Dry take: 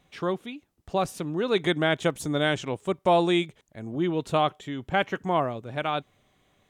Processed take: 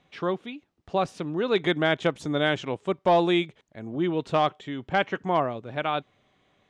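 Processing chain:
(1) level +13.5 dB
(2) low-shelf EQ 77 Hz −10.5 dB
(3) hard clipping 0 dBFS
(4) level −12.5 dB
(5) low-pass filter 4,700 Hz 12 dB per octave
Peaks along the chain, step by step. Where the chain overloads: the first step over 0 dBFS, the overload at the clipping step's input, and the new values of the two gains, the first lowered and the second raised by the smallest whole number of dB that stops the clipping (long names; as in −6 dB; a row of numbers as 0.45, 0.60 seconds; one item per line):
+3.0, +3.5, 0.0, −12.5, −12.0 dBFS
step 1, 3.5 dB
step 1 +9.5 dB, step 4 −8.5 dB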